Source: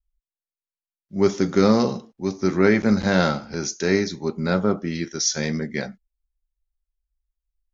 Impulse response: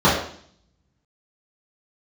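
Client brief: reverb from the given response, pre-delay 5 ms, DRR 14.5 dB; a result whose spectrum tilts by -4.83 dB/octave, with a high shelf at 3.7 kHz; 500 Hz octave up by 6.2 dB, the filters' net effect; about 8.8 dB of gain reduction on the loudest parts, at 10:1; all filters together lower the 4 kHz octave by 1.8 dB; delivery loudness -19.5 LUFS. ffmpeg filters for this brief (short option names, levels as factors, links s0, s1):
-filter_complex "[0:a]equalizer=f=500:t=o:g=8,highshelf=f=3700:g=7,equalizer=f=4000:t=o:g=-9,acompressor=threshold=0.158:ratio=10,asplit=2[s0][s1];[1:a]atrim=start_sample=2205,adelay=5[s2];[s1][s2]afir=irnorm=-1:irlink=0,volume=0.0119[s3];[s0][s3]amix=inputs=2:normalize=0,volume=1.58"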